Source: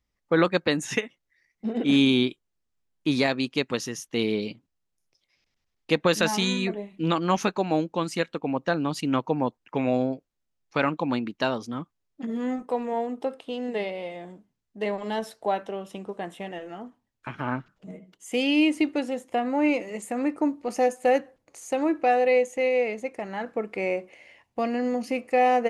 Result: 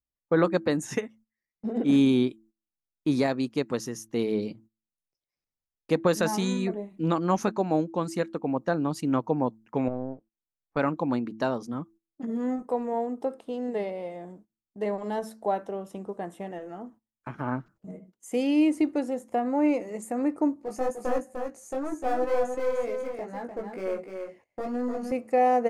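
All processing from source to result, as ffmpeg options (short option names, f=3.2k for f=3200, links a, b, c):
-filter_complex "[0:a]asettb=1/sr,asplit=3[a][b][c];[a]atrim=end=9.884[d];[b]atrim=start=9.88:end=10.77,asetpts=PTS-STARTPTS,afade=t=in:d=0.004:c=qsin,afade=t=out:st=0.886:d=0.004:c=qsin,aeval=exprs='if(lt(val(0),0),0.447*val(0),val(0))':c=same,lowpass=1.7k,acompressor=threshold=-38dB:ratio=1.5:attack=3.2:release=140:knee=1:detection=peak[e];[c]atrim=start=10.766[f];[d][e]acrossfade=d=0.004:c1=hsin:c2=qsin[g];[g][f]acrossfade=d=0.004:c1=qsin:c2=hsin,asettb=1/sr,asplit=3[h][i][j];[h]atrim=end=20.544[k];[i]atrim=start=20.54:end=25.12,asetpts=PTS-STARTPTS,afade=t=in:d=0.004:c=qsin,afade=t=out:st=4.576:d=0.004:c=qsin,aeval=exprs='clip(val(0),-1,0.0531)':c=same,flanger=delay=16:depth=3.7:speed=2.1,aecho=1:1:300:0.501,atrim=end_sample=201978[l];[j]atrim=start=25.116[m];[k][l]acrossfade=d=0.004:c1=hsin:c2=qsin[n];[n][m]acrossfade=d=0.004:c1=qsin:c2=hsin,bandreject=f=110.1:t=h:w=4,bandreject=f=220.2:t=h:w=4,bandreject=f=330.3:t=h:w=4,agate=range=-16dB:threshold=-51dB:ratio=16:detection=peak,equalizer=f=3k:t=o:w=1.5:g=-12.5"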